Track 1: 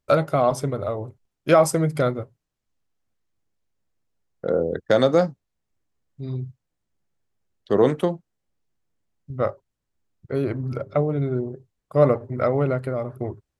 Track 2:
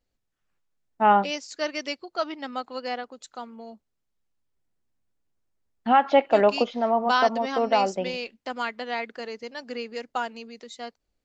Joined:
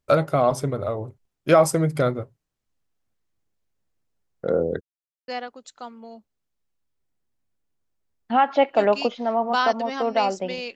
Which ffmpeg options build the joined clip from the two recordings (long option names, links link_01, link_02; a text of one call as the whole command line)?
ffmpeg -i cue0.wav -i cue1.wav -filter_complex "[0:a]apad=whole_dur=10.75,atrim=end=10.75,asplit=2[link_01][link_02];[link_01]atrim=end=4.81,asetpts=PTS-STARTPTS,afade=type=out:start_time=4.806:duration=0.004:curve=hsin[link_03];[link_02]atrim=start=4.81:end=5.28,asetpts=PTS-STARTPTS,volume=0[link_04];[1:a]atrim=start=2.84:end=8.31,asetpts=PTS-STARTPTS,afade=type=in:duration=0.004:curve=hsin[link_05];[link_03][link_04][link_05]concat=n=3:v=0:a=1" out.wav